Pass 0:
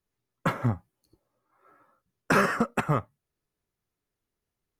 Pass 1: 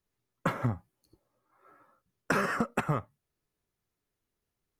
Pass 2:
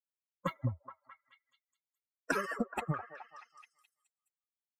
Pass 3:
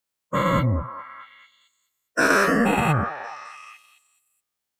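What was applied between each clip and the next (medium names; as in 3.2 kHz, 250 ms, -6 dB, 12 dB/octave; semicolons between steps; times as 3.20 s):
compression 10:1, threshold -24 dBFS, peak gain reduction 7.5 dB
expander on every frequency bin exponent 3; repeats whose band climbs or falls 212 ms, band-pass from 620 Hz, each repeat 0.7 oct, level -7.5 dB
every event in the spectrogram widened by 240 ms; trim +7.5 dB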